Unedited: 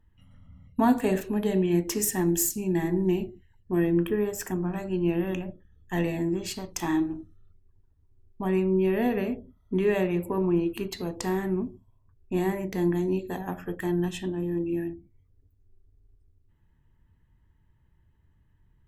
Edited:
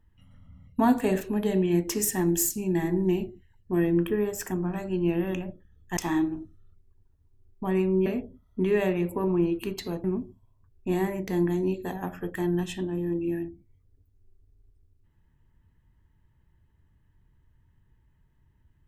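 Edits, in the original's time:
0:05.97–0:06.75: remove
0:08.84–0:09.20: remove
0:11.18–0:11.49: remove

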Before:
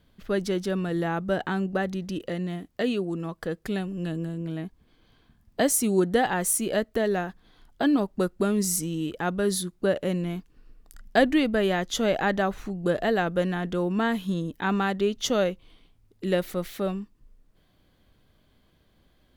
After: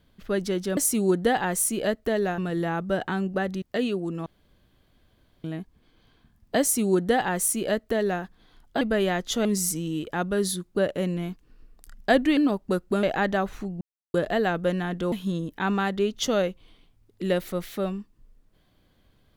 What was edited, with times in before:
0:02.01–0:02.67: remove
0:03.31–0:04.49: fill with room tone
0:05.66–0:07.27: duplicate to 0:00.77
0:07.86–0:08.52: swap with 0:11.44–0:12.08
0:12.86: splice in silence 0.33 s
0:13.84–0:14.14: remove

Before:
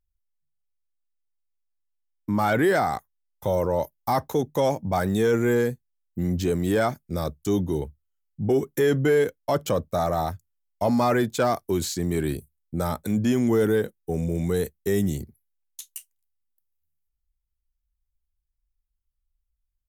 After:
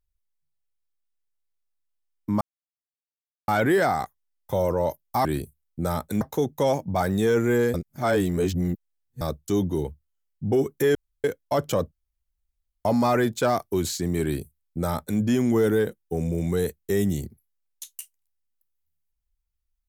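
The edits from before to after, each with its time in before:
0:02.41: splice in silence 1.07 s
0:05.71–0:07.18: reverse
0:08.92–0:09.21: fill with room tone
0:09.89–0:10.82: fill with room tone
0:12.20–0:13.16: duplicate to 0:04.18

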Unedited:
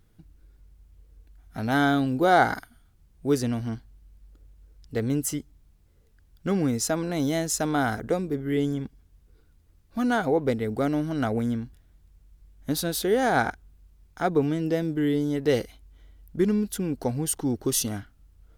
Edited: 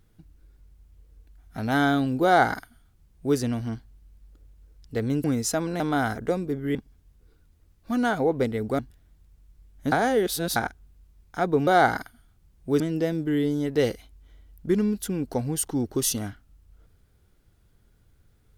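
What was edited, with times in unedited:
0:02.24–0:03.37: duplicate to 0:14.50
0:05.24–0:06.60: remove
0:07.16–0:07.62: remove
0:08.57–0:08.82: remove
0:10.86–0:11.62: remove
0:12.75–0:13.39: reverse

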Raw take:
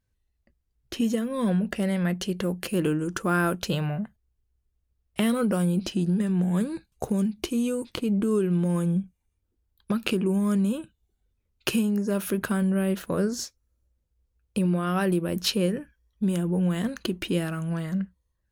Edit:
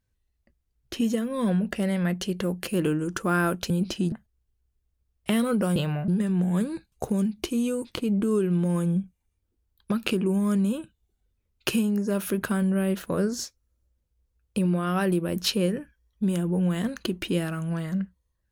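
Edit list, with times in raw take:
0:03.70–0:04.02: swap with 0:05.66–0:06.08

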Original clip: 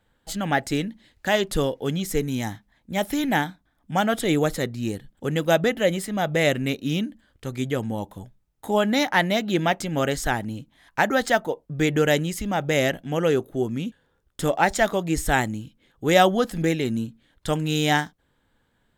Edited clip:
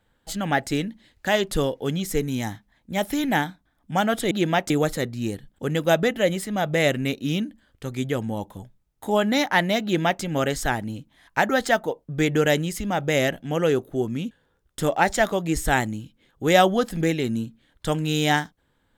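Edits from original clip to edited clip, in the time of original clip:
0:09.44–0:09.83: duplicate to 0:04.31

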